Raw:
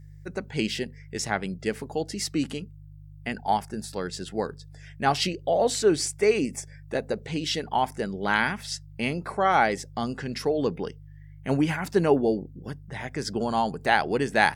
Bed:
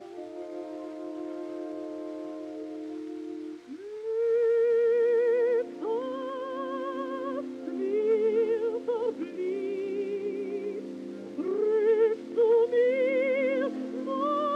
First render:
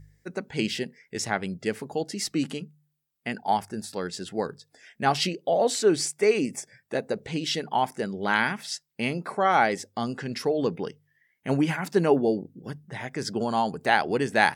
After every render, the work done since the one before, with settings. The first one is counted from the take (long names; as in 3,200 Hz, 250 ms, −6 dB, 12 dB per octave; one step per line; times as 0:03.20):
hum removal 50 Hz, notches 3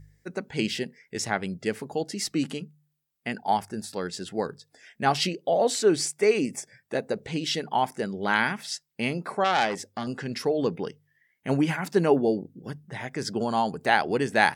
0:09.44–0:10.07: saturating transformer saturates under 2,400 Hz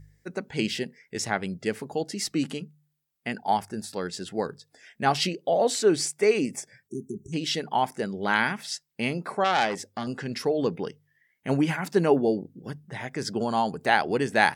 0:06.88–0:07.33: time-frequency box erased 410–5,600 Hz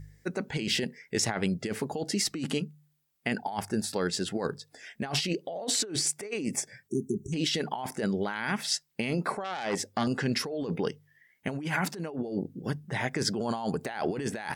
compressor whose output falls as the input rises −31 dBFS, ratio −1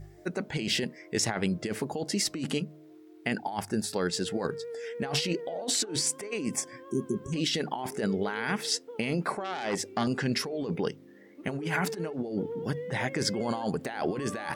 mix in bed −15 dB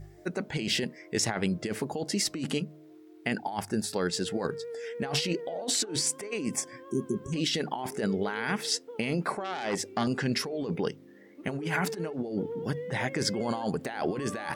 no processing that can be heard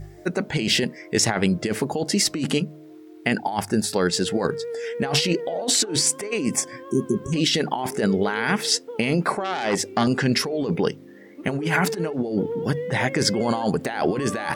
level +8 dB